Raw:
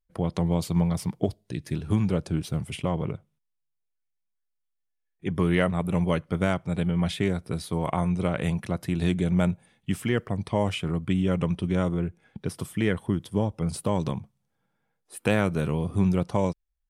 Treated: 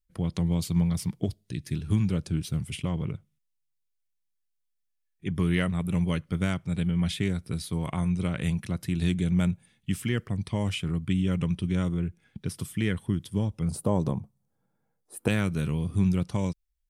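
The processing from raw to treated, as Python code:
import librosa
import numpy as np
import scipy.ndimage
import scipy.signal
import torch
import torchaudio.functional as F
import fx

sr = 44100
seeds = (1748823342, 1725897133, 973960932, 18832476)

y = fx.peak_eq(x, sr, hz=fx.steps((0.0, 690.0), (13.68, 2700.0), (15.28, 680.0)), db=-12.0, octaves=2.2)
y = y * 10.0 ** (1.5 / 20.0)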